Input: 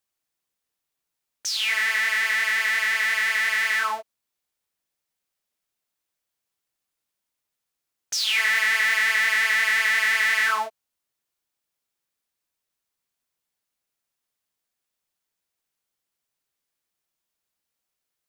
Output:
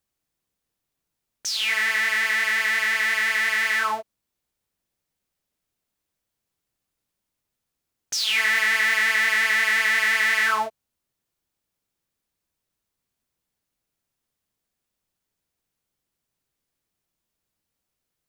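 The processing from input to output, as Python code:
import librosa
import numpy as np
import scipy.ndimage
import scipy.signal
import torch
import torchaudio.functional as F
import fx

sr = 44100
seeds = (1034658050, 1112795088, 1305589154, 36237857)

y = fx.low_shelf(x, sr, hz=370.0, db=12.0)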